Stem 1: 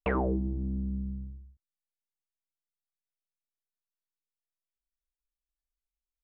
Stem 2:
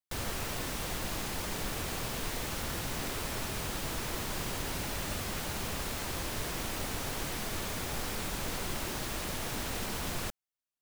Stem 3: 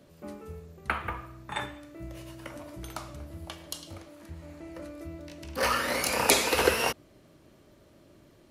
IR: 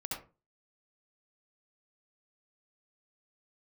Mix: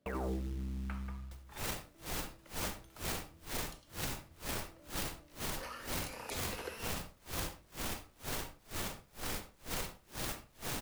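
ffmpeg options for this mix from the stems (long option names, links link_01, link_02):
-filter_complex "[0:a]acrusher=bits=5:mode=log:mix=0:aa=0.000001,volume=-9.5dB,asplit=2[link_01][link_02];[link_02]volume=-10dB[link_03];[1:a]acrusher=bits=7:dc=4:mix=0:aa=0.000001,aeval=exprs='val(0)*pow(10,-38*(0.5-0.5*cos(2*PI*2.1*n/s))/20)':channel_layout=same,adelay=1200,volume=0.5dB,asplit=2[link_04][link_05];[link_05]volume=-11dB[link_06];[2:a]volume=-19.5dB[link_07];[3:a]atrim=start_sample=2205[link_08];[link_03][link_06]amix=inputs=2:normalize=0[link_09];[link_09][link_08]afir=irnorm=-1:irlink=0[link_10];[link_01][link_04][link_07][link_10]amix=inputs=4:normalize=0,alimiter=level_in=4dB:limit=-24dB:level=0:latency=1:release=29,volume=-4dB"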